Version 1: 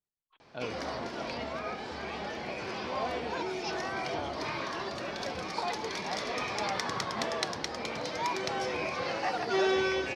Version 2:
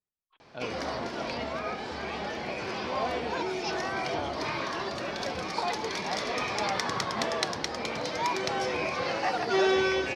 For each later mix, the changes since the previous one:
background +3.0 dB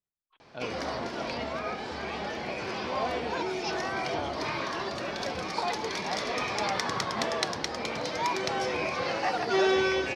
no change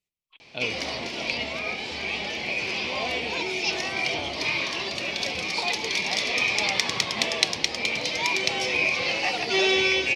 speech +4.5 dB; master: add resonant high shelf 1.9 kHz +7.5 dB, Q 3

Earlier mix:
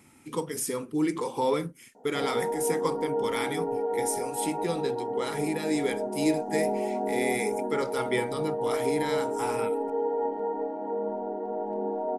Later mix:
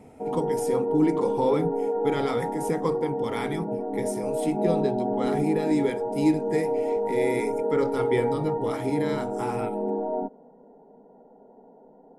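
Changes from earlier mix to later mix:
background: entry -1.95 s; master: add tilt EQ -2.5 dB/octave

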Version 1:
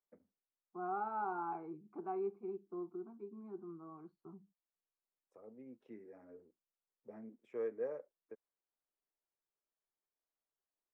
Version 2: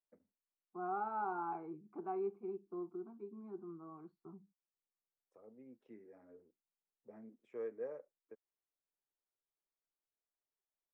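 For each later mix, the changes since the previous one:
first voice -3.5 dB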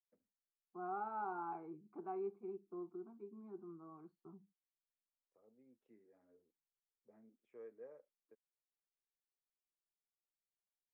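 first voice -11.0 dB; second voice -3.5 dB

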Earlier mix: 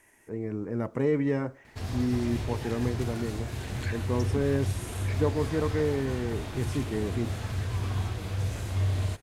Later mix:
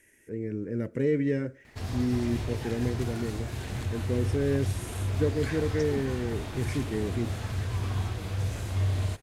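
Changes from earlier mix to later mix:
first voice: add high-order bell 920 Hz -16 dB 1.1 oct; second voice: entry +1.60 s

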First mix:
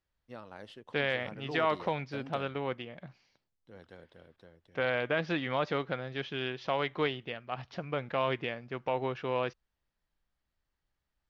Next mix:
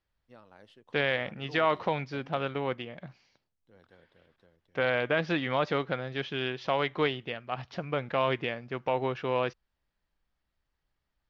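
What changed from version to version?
first voice -7.5 dB; second voice +3.0 dB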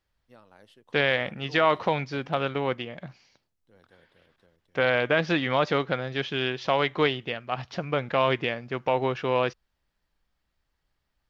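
second voice +4.0 dB; master: remove distance through air 65 m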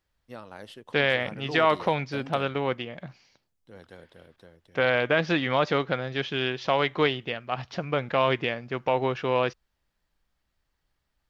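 first voice +11.5 dB

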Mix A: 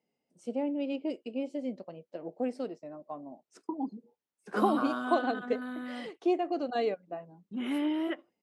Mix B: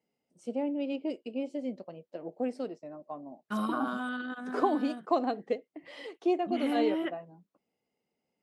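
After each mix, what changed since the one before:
second voice: entry -1.05 s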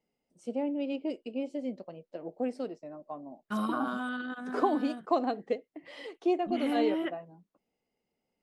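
second voice: remove high-pass 110 Hz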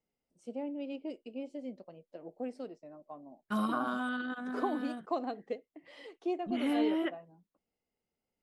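first voice -6.5 dB

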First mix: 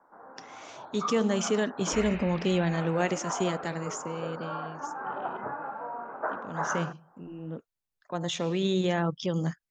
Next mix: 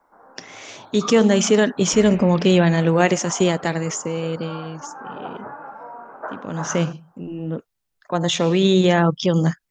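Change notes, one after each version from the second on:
speech +11.0 dB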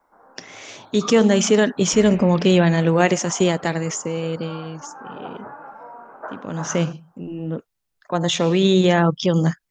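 reverb: off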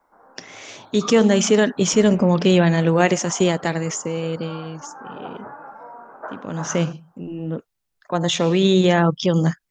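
second sound -7.5 dB

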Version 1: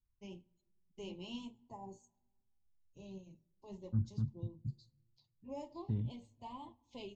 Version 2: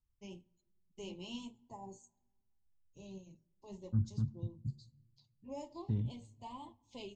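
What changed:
second voice: send +8.5 dB; master: remove distance through air 80 m

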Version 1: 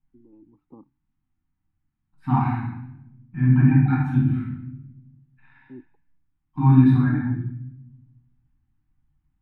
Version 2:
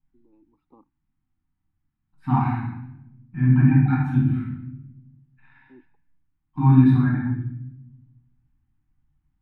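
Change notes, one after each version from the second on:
first voice: add tilt EQ +4.5 dB/octave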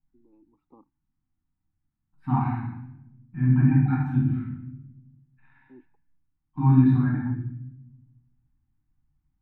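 second voice -3.0 dB; master: add treble shelf 2.8 kHz -9 dB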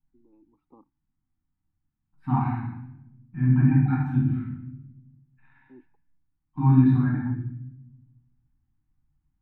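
no change

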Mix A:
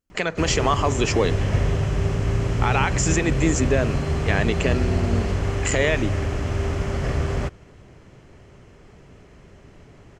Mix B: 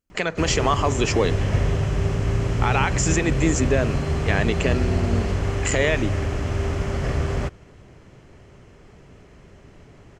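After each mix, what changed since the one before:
no change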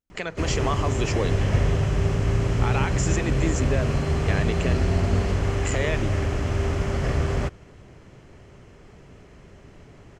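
speech -6.5 dB

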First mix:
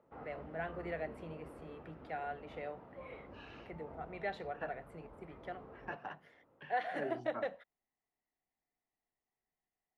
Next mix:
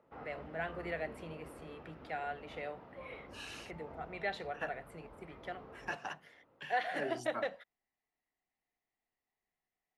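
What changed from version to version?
second voice: remove distance through air 240 m; master: add treble shelf 2.2 kHz +10 dB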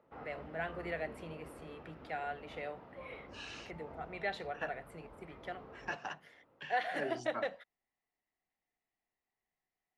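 second voice: add low-pass 6.8 kHz 24 dB/octave

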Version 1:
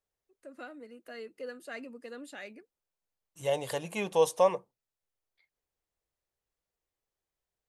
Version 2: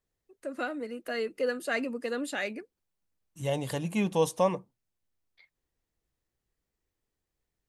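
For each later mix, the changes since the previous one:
first voice +11.5 dB; second voice: add resonant low shelf 350 Hz +8.5 dB, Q 1.5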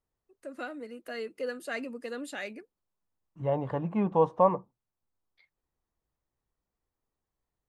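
first voice -5.0 dB; second voice: add resonant low-pass 1.1 kHz, resonance Q 2

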